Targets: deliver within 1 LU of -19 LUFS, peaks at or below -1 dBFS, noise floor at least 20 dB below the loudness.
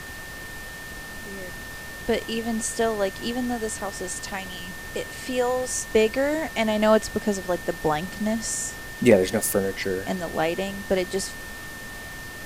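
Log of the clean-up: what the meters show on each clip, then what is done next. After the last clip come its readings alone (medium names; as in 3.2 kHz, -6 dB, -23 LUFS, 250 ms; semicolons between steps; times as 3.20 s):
steady tone 1.8 kHz; tone level -38 dBFS; noise floor -38 dBFS; noise floor target -46 dBFS; loudness -26.0 LUFS; peak level -3.0 dBFS; loudness target -19.0 LUFS
-> band-stop 1.8 kHz, Q 30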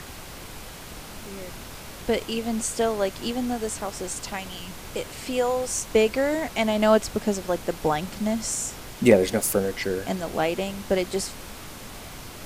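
steady tone not found; noise floor -40 dBFS; noise floor target -46 dBFS
-> noise print and reduce 6 dB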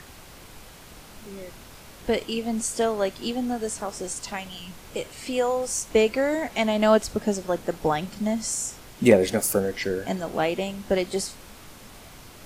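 noise floor -46 dBFS; loudness -25.5 LUFS; peak level -3.0 dBFS; loudness target -19.0 LUFS
-> trim +6.5 dB; peak limiter -1 dBFS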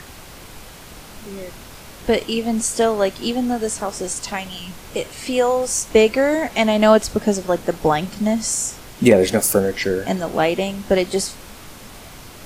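loudness -19.5 LUFS; peak level -1.0 dBFS; noise floor -40 dBFS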